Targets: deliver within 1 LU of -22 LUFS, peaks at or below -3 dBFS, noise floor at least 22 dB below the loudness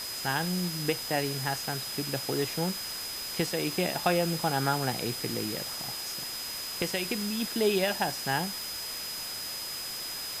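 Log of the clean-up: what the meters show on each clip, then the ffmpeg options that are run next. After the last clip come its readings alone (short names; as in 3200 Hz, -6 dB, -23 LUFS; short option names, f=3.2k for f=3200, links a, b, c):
steady tone 5000 Hz; tone level -37 dBFS; noise floor -37 dBFS; noise floor target -53 dBFS; loudness -30.5 LUFS; peak -10.5 dBFS; loudness target -22.0 LUFS
-> -af "bandreject=f=5k:w=30"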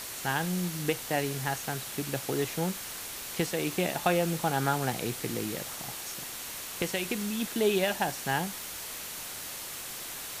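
steady tone none; noise floor -40 dBFS; noise floor target -54 dBFS
-> -af "afftdn=nr=14:nf=-40"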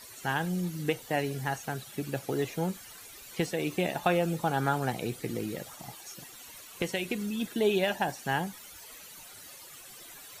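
noise floor -49 dBFS; noise floor target -54 dBFS
-> -af "afftdn=nr=6:nf=-49"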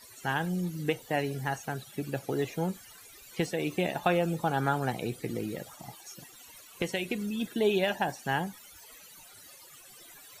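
noise floor -52 dBFS; noise floor target -54 dBFS
-> -af "afftdn=nr=6:nf=-52"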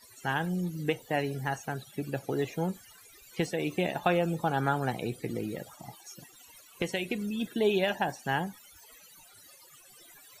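noise floor -56 dBFS; loudness -31.5 LUFS; peak -11.5 dBFS; loudness target -22.0 LUFS
-> -af "volume=9.5dB,alimiter=limit=-3dB:level=0:latency=1"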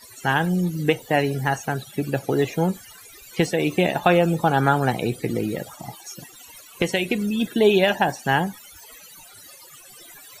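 loudness -22.0 LUFS; peak -3.0 dBFS; noise floor -46 dBFS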